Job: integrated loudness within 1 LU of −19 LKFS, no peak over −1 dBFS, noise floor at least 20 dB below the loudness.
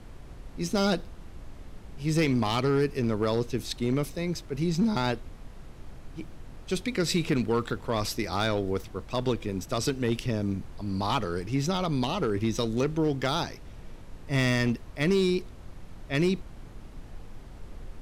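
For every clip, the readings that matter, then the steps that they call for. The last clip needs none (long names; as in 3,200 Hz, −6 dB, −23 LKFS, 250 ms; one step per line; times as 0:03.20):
share of clipped samples 0.7%; peaks flattened at −18.0 dBFS; background noise floor −46 dBFS; target noise floor −49 dBFS; integrated loudness −28.5 LKFS; sample peak −18.0 dBFS; target loudness −19.0 LKFS
→ clipped peaks rebuilt −18 dBFS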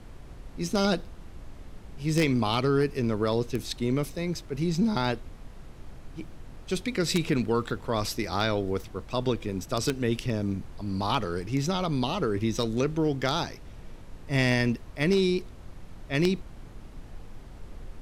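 share of clipped samples 0.0%; background noise floor −46 dBFS; target noise floor −48 dBFS
→ noise reduction from a noise print 6 dB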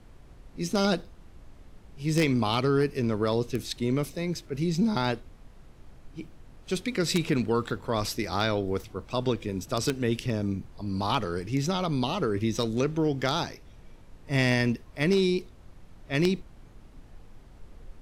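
background noise floor −52 dBFS; integrated loudness −28.0 LKFS; sample peak −9.0 dBFS; target loudness −19.0 LKFS
→ level +9 dB
brickwall limiter −1 dBFS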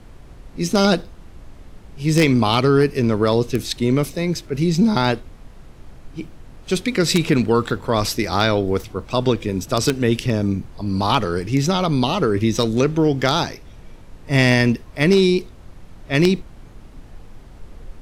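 integrated loudness −19.0 LKFS; sample peak −1.0 dBFS; background noise floor −43 dBFS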